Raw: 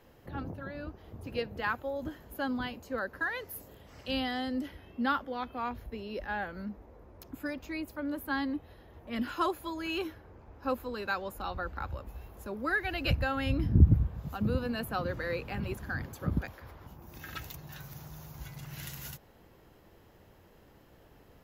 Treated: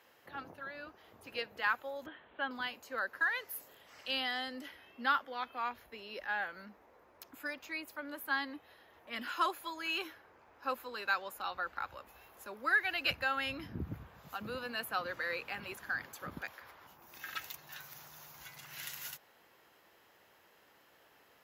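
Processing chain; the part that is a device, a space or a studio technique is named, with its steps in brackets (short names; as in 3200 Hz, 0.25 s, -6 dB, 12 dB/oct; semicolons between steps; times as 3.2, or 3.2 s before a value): 2.06–2.51 steep low-pass 3700 Hz 72 dB/oct; filter by subtraction (in parallel: LPF 1700 Hz 12 dB/oct + phase invert)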